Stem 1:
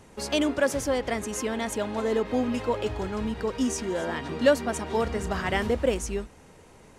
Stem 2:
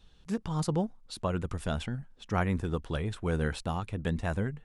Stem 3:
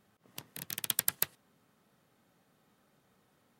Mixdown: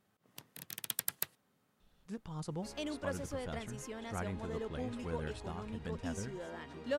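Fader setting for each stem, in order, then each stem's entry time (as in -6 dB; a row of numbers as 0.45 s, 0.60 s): -15.5 dB, -11.5 dB, -6.0 dB; 2.45 s, 1.80 s, 0.00 s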